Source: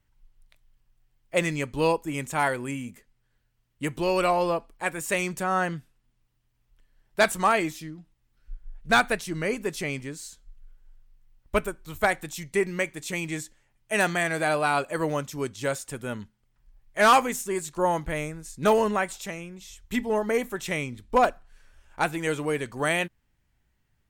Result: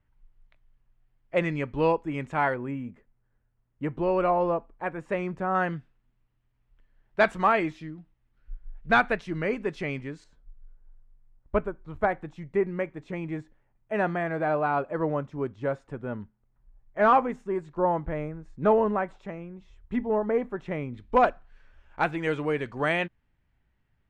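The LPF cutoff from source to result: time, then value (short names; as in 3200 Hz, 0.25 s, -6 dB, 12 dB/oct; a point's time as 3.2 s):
2100 Hz
from 2.54 s 1300 Hz
from 5.55 s 2400 Hz
from 10.24 s 1200 Hz
from 20.94 s 2800 Hz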